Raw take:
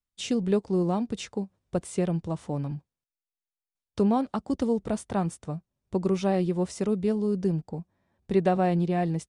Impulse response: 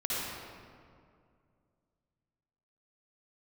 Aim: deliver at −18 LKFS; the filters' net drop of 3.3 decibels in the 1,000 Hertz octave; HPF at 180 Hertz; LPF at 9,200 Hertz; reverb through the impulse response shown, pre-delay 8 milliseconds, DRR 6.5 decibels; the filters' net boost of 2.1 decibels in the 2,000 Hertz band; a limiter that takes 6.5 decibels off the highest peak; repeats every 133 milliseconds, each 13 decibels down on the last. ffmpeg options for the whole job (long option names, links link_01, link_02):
-filter_complex "[0:a]highpass=180,lowpass=9200,equalizer=frequency=1000:width_type=o:gain=-6,equalizer=frequency=2000:width_type=o:gain=4.5,alimiter=limit=-19dB:level=0:latency=1,aecho=1:1:133|266|399:0.224|0.0493|0.0108,asplit=2[link_01][link_02];[1:a]atrim=start_sample=2205,adelay=8[link_03];[link_02][link_03]afir=irnorm=-1:irlink=0,volume=-14dB[link_04];[link_01][link_04]amix=inputs=2:normalize=0,volume=12dB"